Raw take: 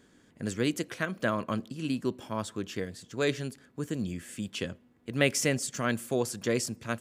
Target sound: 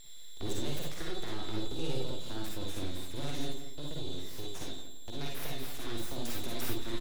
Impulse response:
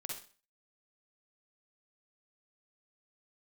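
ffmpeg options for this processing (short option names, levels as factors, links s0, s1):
-filter_complex "[0:a]highpass=82,lowshelf=f=180:g=12,asettb=1/sr,asplit=3[s0][s1][s2];[s0]atrim=end=3.454[s3];[s1]atrim=start=3.45:end=5.87,asetpts=PTS-STARTPTS,afade=t=in:d=0.004:c=qsin,afade=t=out:st=2.416:d=0.004:c=qsin,acompressor=threshold=0.01:ratio=2[s4];[s2]atrim=start=5.866[s5];[s3][s4]acrossfade=d=0.004:c1=hsin:c2=qsin[s6];[s6][s5]acrossfade=d=0.004:c1=qsin:c2=hsin,alimiter=limit=0.0841:level=0:latency=1:release=44,acrossover=split=220|3000[s7][s8][s9];[s8]acompressor=threshold=0.00794:ratio=6[s10];[s7][s10][s9]amix=inputs=3:normalize=0,aeval=exprs='val(0)+0.00562*sin(2*PI*3700*n/s)':c=same,aeval=exprs='abs(val(0))':c=same,asplit=2[s11][s12];[s12]adelay=171,lowpass=f=3000:p=1,volume=0.335,asplit=2[s13][s14];[s14]adelay=171,lowpass=f=3000:p=1,volume=0.29,asplit=2[s15][s16];[s16]adelay=171,lowpass=f=3000:p=1,volume=0.29[s17];[s11][s13][s15][s17]amix=inputs=4:normalize=0[s18];[1:a]atrim=start_sample=2205,atrim=end_sample=4410[s19];[s18][s19]afir=irnorm=-1:irlink=0,volume=1.41"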